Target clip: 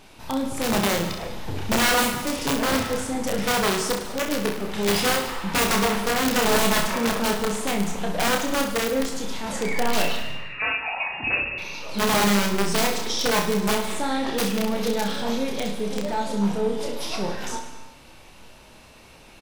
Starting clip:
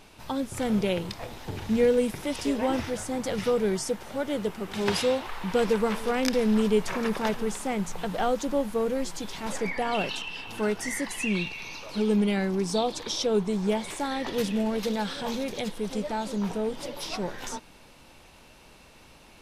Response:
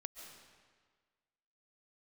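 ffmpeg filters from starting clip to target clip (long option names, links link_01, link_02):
-filter_complex "[0:a]aeval=exprs='(mod(8.91*val(0)+1,2)-1)/8.91':channel_layout=same,asettb=1/sr,asplit=3[link_01][link_02][link_03];[link_01]atrim=end=10.164[link_04];[link_02]atrim=start=10.16:end=11.58,asetpts=PTS-STARTPTS,afade=type=in:duration=0.004:curve=qsin,afade=type=out:start_time=1.416:duration=0.004:curve=qsin,lowpass=frequency=2400:width_type=q:width=0.5098,lowpass=frequency=2400:width_type=q:width=0.6013,lowpass=frequency=2400:width_type=q:width=0.9,lowpass=frequency=2400:width_type=q:width=2.563,afreqshift=-2800[link_05];[link_03]atrim=start=11.576[link_06];[link_04][link_05]acrossfade=duration=0.004:curve1=hsin:curve2=qsin[link_07];[link_07][link_06]acrossfade=duration=0.004:curve1=qsin:curve2=hsin,aecho=1:1:30|64.5|104.2|149.8|202.3:0.631|0.398|0.251|0.158|0.1,asplit=2[link_08][link_09];[1:a]atrim=start_sample=2205,afade=type=out:start_time=0.41:duration=0.01,atrim=end_sample=18522[link_10];[link_09][link_10]afir=irnorm=-1:irlink=0,volume=2.5dB[link_11];[link_08][link_11]amix=inputs=2:normalize=0,volume=-3dB"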